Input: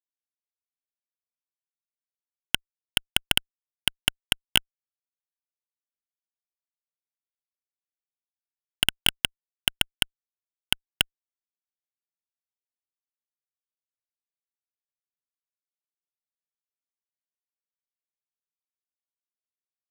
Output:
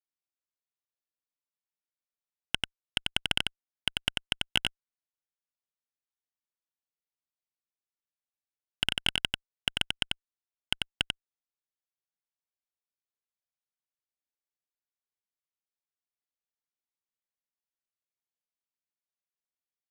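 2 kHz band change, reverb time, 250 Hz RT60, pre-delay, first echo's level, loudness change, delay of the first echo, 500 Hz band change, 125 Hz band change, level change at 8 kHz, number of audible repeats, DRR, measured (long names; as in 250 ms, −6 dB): −4.0 dB, no reverb audible, no reverb audible, no reverb audible, −3.5 dB, −5.0 dB, 92 ms, −3.5 dB, −3.5 dB, −10.0 dB, 1, no reverb audible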